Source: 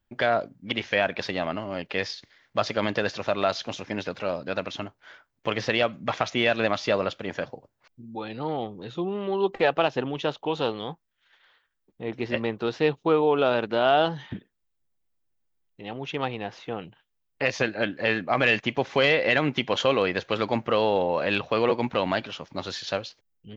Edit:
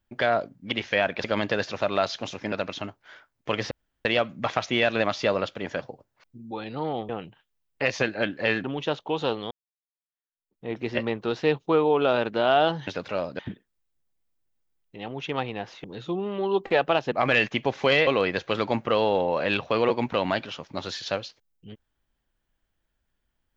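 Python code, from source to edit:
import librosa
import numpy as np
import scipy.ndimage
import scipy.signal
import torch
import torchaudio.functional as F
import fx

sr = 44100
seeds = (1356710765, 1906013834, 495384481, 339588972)

y = fx.edit(x, sr, fx.cut(start_s=1.24, length_s=1.46),
    fx.move(start_s=3.98, length_s=0.52, to_s=14.24),
    fx.insert_room_tone(at_s=5.69, length_s=0.34),
    fx.swap(start_s=8.73, length_s=1.28, other_s=16.69, other_length_s=1.55),
    fx.fade_in_span(start_s=10.88, length_s=1.15, curve='exp'),
    fx.cut(start_s=19.19, length_s=0.69), tone=tone)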